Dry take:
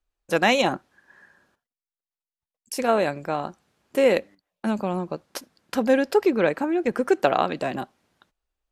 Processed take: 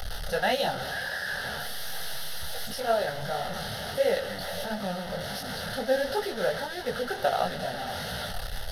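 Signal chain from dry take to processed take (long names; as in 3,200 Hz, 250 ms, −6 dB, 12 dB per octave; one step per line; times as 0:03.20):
linear delta modulator 64 kbit/s, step −21.5 dBFS
phaser with its sweep stopped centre 1,600 Hz, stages 8
on a send: echo with a time of its own for lows and highs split 590 Hz, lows 137 ms, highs 492 ms, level −15.5 dB
on the sum: micro pitch shift up and down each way 51 cents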